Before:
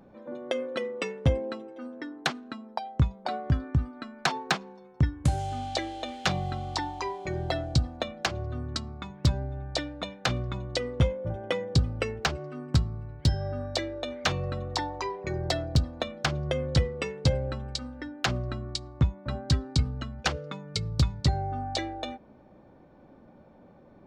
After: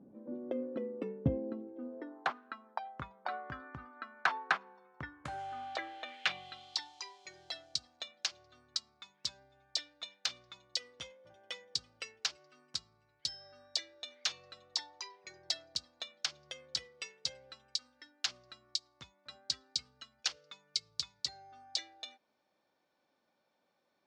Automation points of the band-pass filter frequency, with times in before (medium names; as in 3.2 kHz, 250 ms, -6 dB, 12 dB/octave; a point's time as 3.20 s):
band-pass filter, Q 1.6
1.71 s 260 Hz
2.42 s 1.4 kHz
5.84 s 1.4 kHz
6.90 s 5.2 kHz